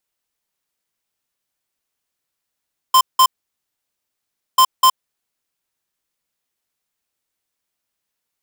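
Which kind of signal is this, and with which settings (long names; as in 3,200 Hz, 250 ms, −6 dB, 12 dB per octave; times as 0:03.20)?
beeps in groups square 1,040 Hz, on 0.07 s, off 0.18 s, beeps 2, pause 1.32 s, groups 2, −10 dBFS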